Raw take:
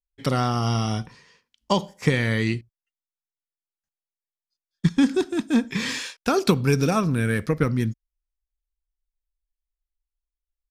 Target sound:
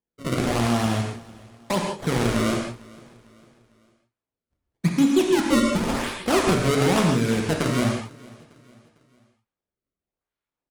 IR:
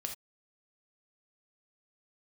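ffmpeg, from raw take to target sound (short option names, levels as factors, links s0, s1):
-filter_complex "[0:a]highpass=140,equalizer=f=1700:t=o:w=0.52:g=-12,alimiter=limit=0.178:level=0:latency=1,acrusher=samples=30:mix=1:aa=0.000001:lfo=1:lforange=48:lforate=0.94,aecho=1:1:451|902|1353:0.0708|0.0311|0.0137[s0];[1:a]atrim=start_sample=2205,asetrate=22050,aresample=44100[s1];[s0][s1]afir=irnorm=-1:irlink=0,volume=1.12"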